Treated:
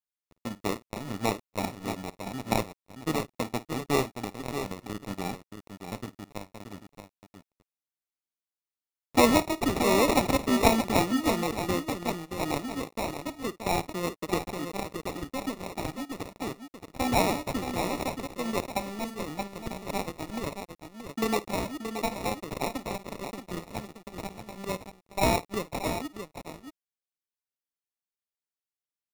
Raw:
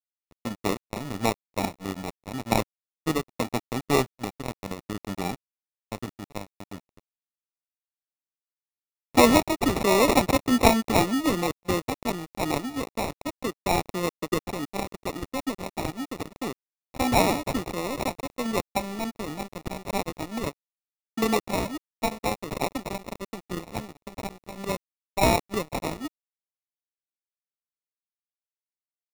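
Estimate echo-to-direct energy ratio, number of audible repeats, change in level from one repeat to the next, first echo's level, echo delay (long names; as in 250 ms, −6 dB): −7.5 dB, 2, repeats not evenly spaced, −18.0 dB, 53 ms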